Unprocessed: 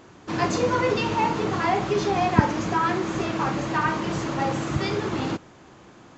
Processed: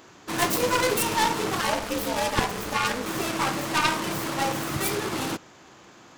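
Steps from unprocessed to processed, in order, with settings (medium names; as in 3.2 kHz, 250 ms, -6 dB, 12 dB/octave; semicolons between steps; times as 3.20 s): tracing distortion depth 0.37 ms; tilt EQ +2 dB/octave; 1.61–3.06 s: ring modulator 120 Hz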